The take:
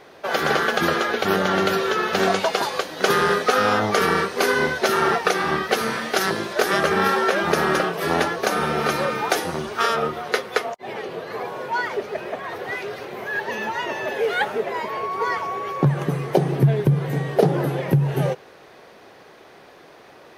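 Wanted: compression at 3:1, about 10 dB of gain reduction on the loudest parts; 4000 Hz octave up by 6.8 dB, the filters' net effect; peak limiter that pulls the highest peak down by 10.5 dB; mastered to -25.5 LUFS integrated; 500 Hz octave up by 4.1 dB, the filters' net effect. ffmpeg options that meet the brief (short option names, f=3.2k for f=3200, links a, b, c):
-af "equalizer=f=500:t=o:g=5,equalizer=f=4k:t=o:g=8.5,acompressor=threshold=-23dB:ratio=3,volume=1dB,alimiter=limit=-15dB:level=0:latency=1"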